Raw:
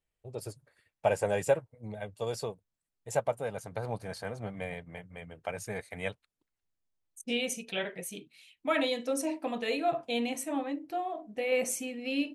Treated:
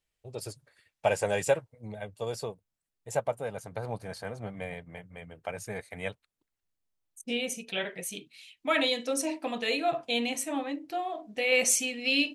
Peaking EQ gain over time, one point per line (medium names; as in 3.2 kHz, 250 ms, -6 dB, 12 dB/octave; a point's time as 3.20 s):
peaking EQ 4.5 kHz 2.7 oct
1.57 s +7 dB
2.17 s 0 dB
7.52 s 0 dB
8.10 s +7 dB
10.88 s +7 dB
11.64 s +14 dB